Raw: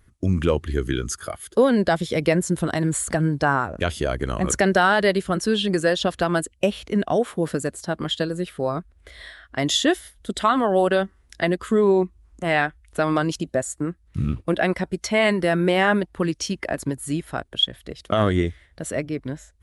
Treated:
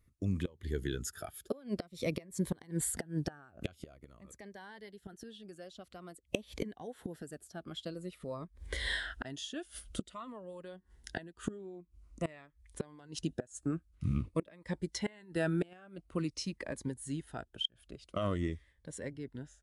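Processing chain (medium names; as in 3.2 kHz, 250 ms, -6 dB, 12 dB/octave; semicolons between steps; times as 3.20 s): Doppler pass-by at 8.25 s, 15 m/s, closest 10 m; inverted gate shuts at -30 dBFS, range -25 dB; Shepard-style phaser falling 0.49 Hz; trim +10 dB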